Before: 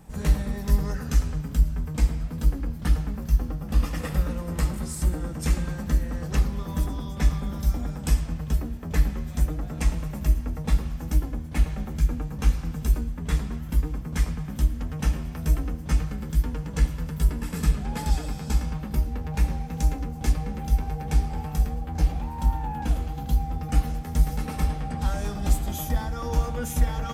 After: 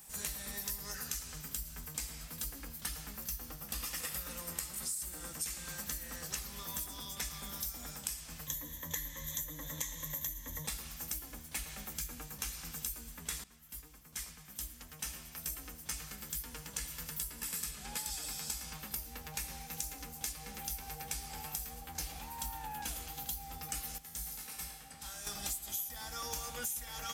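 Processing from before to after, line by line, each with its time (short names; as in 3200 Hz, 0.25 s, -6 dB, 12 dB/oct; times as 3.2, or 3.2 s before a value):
8.47–10.67 ripple EQ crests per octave 1.1, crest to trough 16 dB
13.44–16.89 fade in, from -16 dB
23.98–25.27 resonator 55 Hz, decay 0.94 s, mix 80%
whole clip: pre-emphasis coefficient 0.97; compressor 12:1, threshold -45 dBFS; gain +9.5 dB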